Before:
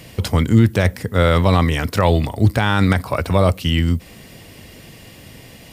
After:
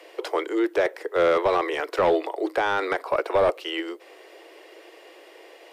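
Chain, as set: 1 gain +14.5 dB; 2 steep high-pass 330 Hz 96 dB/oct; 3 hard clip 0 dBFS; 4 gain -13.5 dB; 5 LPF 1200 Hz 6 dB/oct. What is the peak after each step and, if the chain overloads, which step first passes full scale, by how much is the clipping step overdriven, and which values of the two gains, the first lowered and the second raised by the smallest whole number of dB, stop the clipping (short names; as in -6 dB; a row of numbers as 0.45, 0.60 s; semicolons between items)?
+12.0, +9.0, 0.0, -13.5, -13.5 dBFS; step 1, 9.0 dB; step 1 +5.5 dB, step 4 -4.5 dB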